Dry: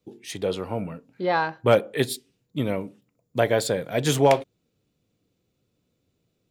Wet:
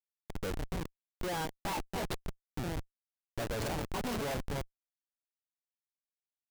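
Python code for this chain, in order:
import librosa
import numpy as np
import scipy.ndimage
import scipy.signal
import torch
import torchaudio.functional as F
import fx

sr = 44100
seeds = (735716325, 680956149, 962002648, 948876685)

y = fx.pitch_trill(x, sr, semitones=8.5, every_ms=526)
y = y + 10.0 ** (-11.5 / 20.0) * np.pad(y, (int(269 * sr / 1000.0), 0))[:len(y)]
y = fx.schmitt(y, sr, flips_db=-25.0)
y = F.gain(torch.from_numpy(y), -8.0).numpy()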